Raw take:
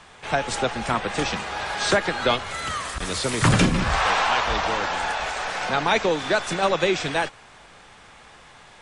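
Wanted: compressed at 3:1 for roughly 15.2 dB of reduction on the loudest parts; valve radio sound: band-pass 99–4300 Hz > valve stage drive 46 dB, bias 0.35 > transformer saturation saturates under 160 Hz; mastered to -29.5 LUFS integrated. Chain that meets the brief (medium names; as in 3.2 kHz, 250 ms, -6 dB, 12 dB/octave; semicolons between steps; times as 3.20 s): compression 3:1, threshold -35 dBFS; band-pass 99–4300 Hz; valve stage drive 46 dB, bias 0.35; transformer saturation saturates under 160 Hz; trim +18.5 dB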